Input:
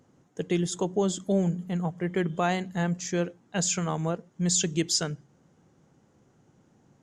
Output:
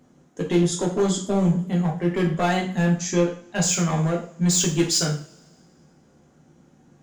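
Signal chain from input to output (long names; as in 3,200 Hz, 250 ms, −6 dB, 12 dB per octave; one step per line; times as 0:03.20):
gain into a clipping stage and back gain 21.5 dB
coupled-rooms reverb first 0.41 s, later 2 s, from −27 dB, DRR −1.5 dB
level +2 dB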